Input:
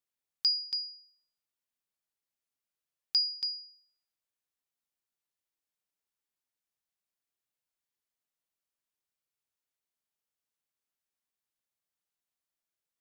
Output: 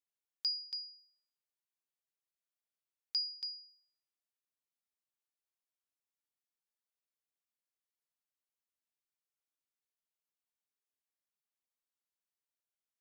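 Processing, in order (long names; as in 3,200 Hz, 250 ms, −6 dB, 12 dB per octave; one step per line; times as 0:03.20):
high-pass filter 210 Hz
level −7.5 dB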